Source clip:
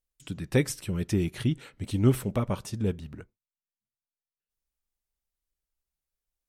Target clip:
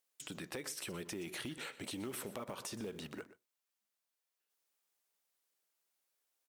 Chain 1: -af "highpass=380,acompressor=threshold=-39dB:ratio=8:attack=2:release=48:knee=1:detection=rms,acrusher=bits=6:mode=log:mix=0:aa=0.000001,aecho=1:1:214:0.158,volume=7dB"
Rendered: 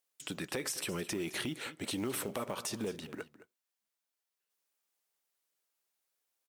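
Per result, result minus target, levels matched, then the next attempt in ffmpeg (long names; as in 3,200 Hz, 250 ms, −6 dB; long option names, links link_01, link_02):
echo 92 ms late; downward compressor: peak gain reduction −6.5 dB
-af "highpass=380,acompressor=threshold=-39dB:ratio=8:attack=2:release=48:knee=1:detection=rms,acrusher=bits=6:mode=log:mix=0:aa=0.000001,aecho=1:1:122:0.158,volume=7dB"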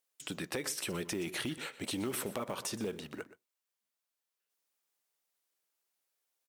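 downward compressor: peak gain reduction −6.5 dB
-af "highpass=380,acompressor=threshold=-46.5dB:ratio=8:attack=2:release=48:knee=1:detection=rms,acrusher=bits=6:mode=log:mix=0:aa=0.000001,aecho=1:1:122:0.158,volume=7dB"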